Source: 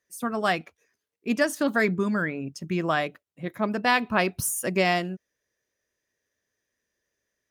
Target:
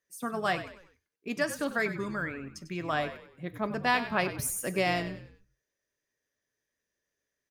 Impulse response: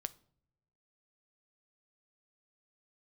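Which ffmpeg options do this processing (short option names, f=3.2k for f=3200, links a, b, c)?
-filter_complex "[0:a]asettb=1/sr,asplit=3[a][b][c];[a]atrim=end=1.284[d];[b]atrim=start=1.28:end=2.93,asetpts=PTS-STARTPTS,afade=t=in:d=0.004:c=qsin,afade=t=out:st=1.646:d=0.004:c=qsin,lowshelf=f=480:g=-5.5[e];[c]atrim=start=2.926[f];[d][e]acrossfade=d=0.004:c1=hsin:c2=qsin[g];[g][f]acrossfade=d=0.004:c1=qsin:c2=hsin,asplit=5[h][i][j][k][l];[i]adelay=97,afreqshift=-59,volume=-12dB[m];[j]adelay=194,afreqshift=-118,volume=-20.2dB[n];[k]adelay=291,afreqshift=-177,volume=-28.4dB[o];[l]adelay=388,afreqshift=-236,volume=-36.5dB[p];[h][m][n][o][p]amix=inputs=5:normalize=0[q];[1:a]atrim=start_sample=2205,atrim=end_sample=3087[r];[q][r]afir=irnorm=-1:irlink=0,volume=-3dB"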